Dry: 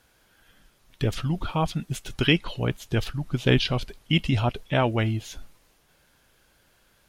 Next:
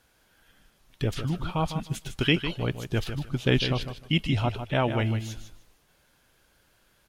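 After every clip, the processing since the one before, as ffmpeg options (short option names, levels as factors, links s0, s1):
-af "aecho=1:1:153|306|459:0.335|0.0636|0.0121,volume=0.75"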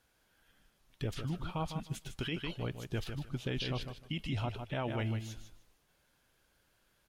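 -af "alimiter=limit=0.119:level=0:latency=1:release=33,volume=0.398"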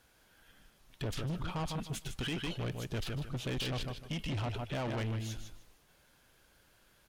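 -af "asoftclip=type=tanh:threshold=0.0112,volume=2.11"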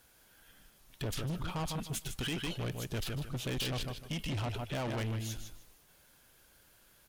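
-af "highshelf=f=8000:g=10.5"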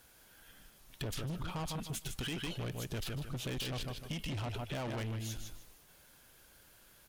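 -af "acompressor=threshold=0.0112:ratio=6,volume=1.26"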